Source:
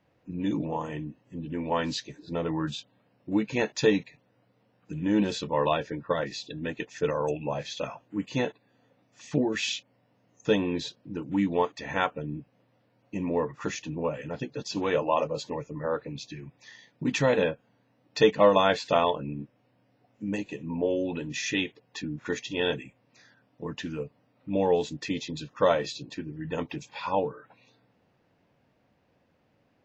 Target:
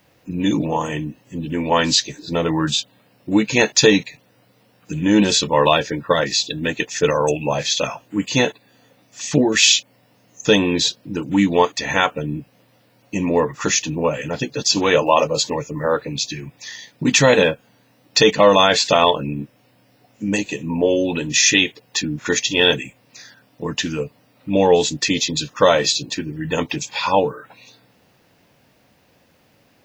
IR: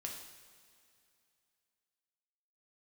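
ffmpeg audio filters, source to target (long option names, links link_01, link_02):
-af "crystalizer=i=4:c=0,alimiter=level_in=10.5dB:limit=-1dB:release=50:level=0:latency=1,volume=-1dB"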